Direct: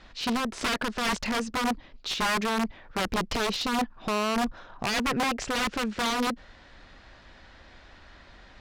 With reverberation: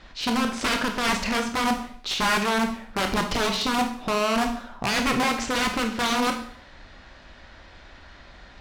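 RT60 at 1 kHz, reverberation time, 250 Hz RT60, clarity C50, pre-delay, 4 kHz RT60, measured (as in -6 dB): 0.55 s, 0.55 s, 0.60 s, 8.0 dB, 18 ms, 0.55 s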